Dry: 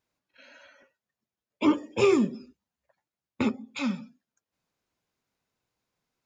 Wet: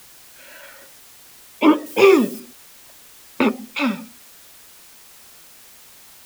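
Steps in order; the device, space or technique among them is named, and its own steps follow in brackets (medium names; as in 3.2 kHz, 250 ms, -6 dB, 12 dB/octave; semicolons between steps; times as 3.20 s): dictaphone (band-pass 300–3700 Hz; level rider; wow and flutter; white noise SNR 23 dB); 1.86–2.40 s: treble shelf 5.7 kHz +10 dB; trim +1 dB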